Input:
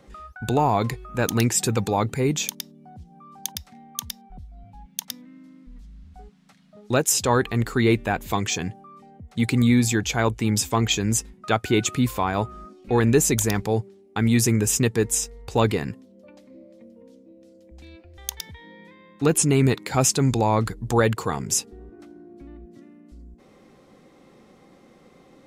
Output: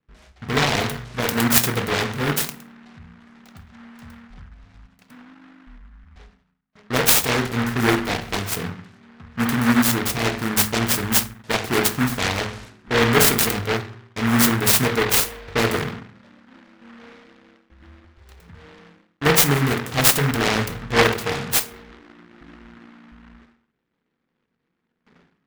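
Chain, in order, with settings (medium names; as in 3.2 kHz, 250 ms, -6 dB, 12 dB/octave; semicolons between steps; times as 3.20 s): level-controlled noise filter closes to 410 Hz, open at -17.5 dBFS; gate with hold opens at -44 dBFS; high-order bell 7.9 kHz +11 dB; hum notches 60/120/180/240 Hz; in parallel at -2 dB: peak limiter -7.5 dBFS, peak gain reduction 10 dB; on the sum: Butterworth band-stop 1.7 kHz, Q 1.3; on a send at -3 dB: reverberation RT60 0.55 s, pre-delay 3 ms; on the sum: delay time shaken by noise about 1.3 kHz, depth 0.3 ms; trim -7 dB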